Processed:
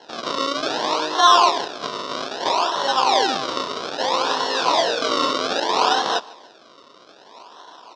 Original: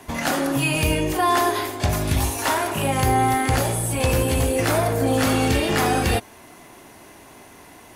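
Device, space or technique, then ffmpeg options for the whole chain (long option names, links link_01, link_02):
circuit-bent sampling toy: -filter_complex "[0:a]highpass=180,acrusher=samples=36:mix=1:aa=0.000001:lfo=1:lforange=36:lforate=0.62,highpass=530,equalizer=frequency=1000:width_type=q:width=4:gain=9,equalizer=frequency=2100:width_type=q:width=4:gain=-8,equalizer=frequency=3700:width_type=q:width=4:gain=8,equalizer=frequency=5300:width_type=q:width=4:gain=8,lowpass=frequency=5700:width=0.5412,lowpass=frequency=5700:width=1.3066,asettb=1/sr,asplit=3[link_01][link_02][link_03];[link_01]atrim=end=4.224[link_04];[link_02]atrim=start=4.22:end=5.31,asetpts=PTS-STARTPTS,afade=type=in:duration=0.004:curve=qsin,afade=type=out:start_time=1.086:duration=0.004:curve=qsin,asplit=2[link_05][link_06];[link_06]adelay=24,volume=-4dB[link_07];[link_05][link_07]amix=inputs=2:normalize=0,atrim=end_sample=48069[link_08];[link_03]atrim=start=5.306[link_09];[link_04][link_08]acrossfade=duration=0.004:curve1=hsin:curve2=qsin[link_10];[link_10][link_09]acrossfade=duration=0.004:curve1=qsin:curve2=hsin,aecho=1:1:148|296:0.0708|0.0241,volume=2.5dB"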